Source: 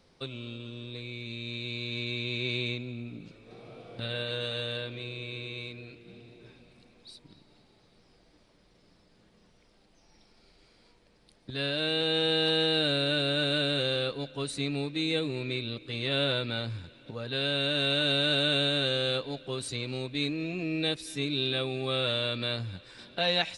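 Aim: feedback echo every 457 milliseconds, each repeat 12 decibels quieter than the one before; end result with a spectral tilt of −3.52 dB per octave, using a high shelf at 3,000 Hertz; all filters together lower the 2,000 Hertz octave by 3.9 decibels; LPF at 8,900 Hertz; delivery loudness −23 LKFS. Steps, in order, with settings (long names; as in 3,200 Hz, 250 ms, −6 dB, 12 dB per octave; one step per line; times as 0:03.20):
low-pass filter 8,900 Hz
parametric band 2,000 Hz −3.5 dB
high-shelf EQ 3,000 Hz −5 dB
repeating echo 457 ms, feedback 25%, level −12 dB
level +9 dB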